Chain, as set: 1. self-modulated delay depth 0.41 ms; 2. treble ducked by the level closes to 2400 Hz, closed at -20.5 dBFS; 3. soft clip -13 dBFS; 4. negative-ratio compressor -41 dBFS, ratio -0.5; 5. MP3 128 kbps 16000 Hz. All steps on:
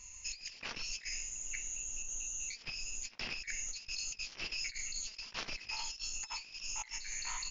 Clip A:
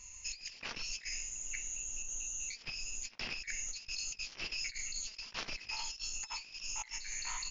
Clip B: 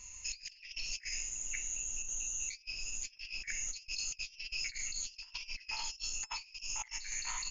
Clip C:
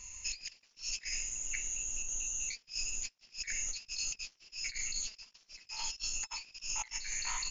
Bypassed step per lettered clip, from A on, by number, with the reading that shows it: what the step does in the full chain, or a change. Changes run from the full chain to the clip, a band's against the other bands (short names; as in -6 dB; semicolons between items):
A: 3, distortion -26 dB; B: 1, crest factor change -4.5 dB; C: 2, 8 kHz band +3.5 dB